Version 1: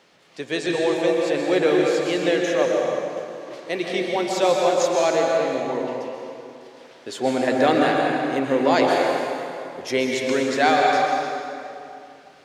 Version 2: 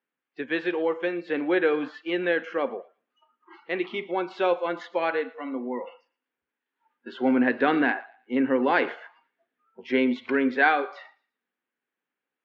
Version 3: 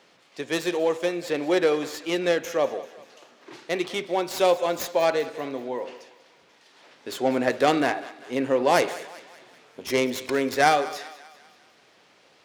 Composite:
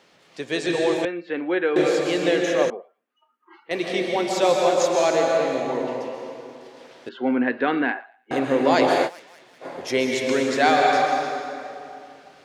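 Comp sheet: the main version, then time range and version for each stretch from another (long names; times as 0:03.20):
1
0:01.05–0:01.76: punch in from 2
0:02.70–0:03.71: punch in from 2
0:07.09–0:08.31: punch in from 2
0:09.07–0:09.63: punch in from 3, crossfade 0.06 s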